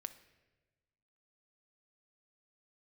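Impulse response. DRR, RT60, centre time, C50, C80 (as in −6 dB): 10.0 dB, 1.2 s, 6 ms, 13.5 dB, 16.0 dB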